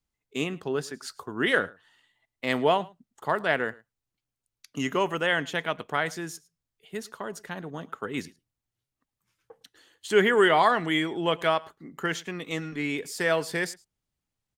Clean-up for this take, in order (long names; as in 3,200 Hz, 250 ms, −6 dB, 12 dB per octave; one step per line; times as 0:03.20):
echo removal 108 ms −23 dB